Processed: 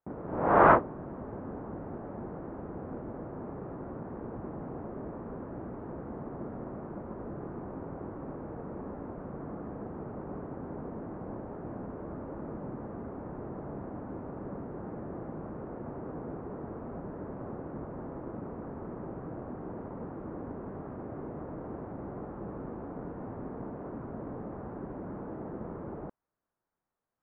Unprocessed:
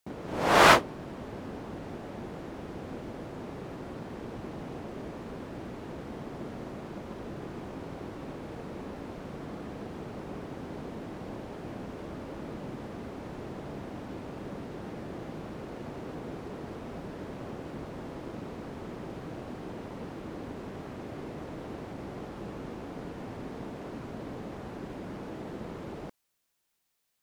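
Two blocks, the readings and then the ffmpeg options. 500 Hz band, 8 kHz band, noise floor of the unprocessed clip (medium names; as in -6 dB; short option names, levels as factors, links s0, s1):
0.0 dB, under -35 dB, -43 dBFS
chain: -af "lowpass=f=1400:w=0.5412,lowpass=f=1400:w=1.3066"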